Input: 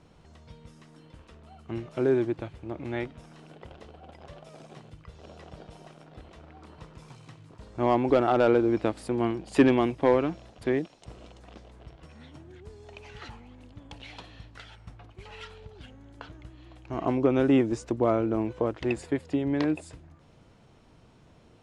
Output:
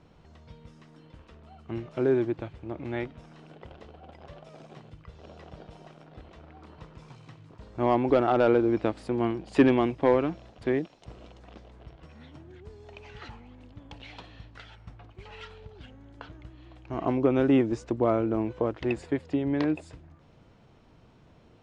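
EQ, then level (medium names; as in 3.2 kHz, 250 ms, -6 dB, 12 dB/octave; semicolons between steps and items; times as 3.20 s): distance through air 75 m; 0.0 dB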